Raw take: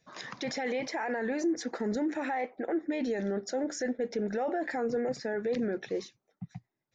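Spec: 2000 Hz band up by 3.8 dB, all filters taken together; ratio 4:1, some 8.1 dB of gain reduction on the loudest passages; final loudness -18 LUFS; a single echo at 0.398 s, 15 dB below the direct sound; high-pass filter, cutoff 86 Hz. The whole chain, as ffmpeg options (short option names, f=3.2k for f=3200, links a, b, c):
-af "highpass=86,equalizer=f=2k:t=o:g=4.5,acompressor=threshold=-36dB:ratio=4,aecho=1:1:398:0.178,volume=21dB"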